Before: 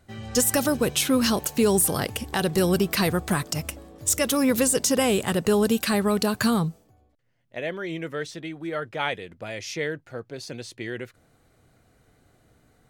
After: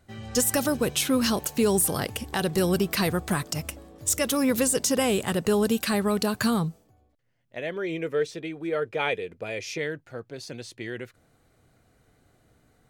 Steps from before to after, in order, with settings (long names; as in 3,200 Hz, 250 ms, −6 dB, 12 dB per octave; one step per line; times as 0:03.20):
0:07.76–0:09.78: hollow resonant body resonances 440/2,400 Hz, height 10 dB, ringing for 25 ms
level −2 dB